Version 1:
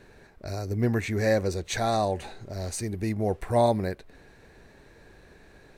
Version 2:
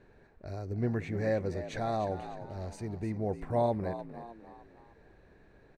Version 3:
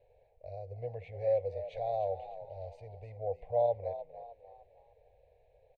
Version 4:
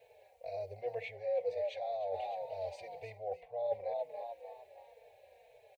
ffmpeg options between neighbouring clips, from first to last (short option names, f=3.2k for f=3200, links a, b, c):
-filter_complex "[0:a]lowpass=f=1.5k:p=1,asplit=2[a][b];[b]asplit=4[c][d][e][f];[c]adelay=302,afreqshift=57,volume=-12dB[g];[d]adelay=604,afreqshift=114,volume=-19.5dB[h];[e]adelay=906,afreqshift=171,volume=-27.1dB[i];[f]adelay=1208,afreqshift=228,volume=-34.6dB[j];[g][h][i][j]amix=inputs=4:normalize=0[k];[a][k]amix=inputs=2:normalize=0,volume=-6dB"
-af "firequalizer=gain_entry='entry(100,0);entry(210,-26);entry(330,-25);entry(490,11);entry(760,6);entry(1300,-29);entry(2200,-1);entry(3200,0);entry(6000,-17);entry(9500,-21)':delay=0.05:min_phase=1,volume=-7.5dB"
-filter_complex "[0:a]highpass=f=1.5k:p=1,areverse,acompressor=threshold=-48dB:ratio=16,areverse,asplit=2[a][b];[b]adelay=4,afreqshift=-2[c];[a][c]amix=inputs=2:normalize=1,volume=17.5dB"